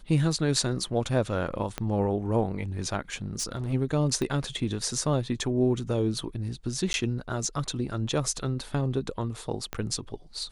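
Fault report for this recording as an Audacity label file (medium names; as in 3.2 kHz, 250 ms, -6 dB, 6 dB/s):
1.780000	1.780000	pop -15 dBFS
3.220000	3.740000	clipped -26 dBFS
4.220000	4.220000	pop -18 dBFS
6.930000	6.940000	dropout 11 ms
9.730000	9.730000	pop -16 dBFS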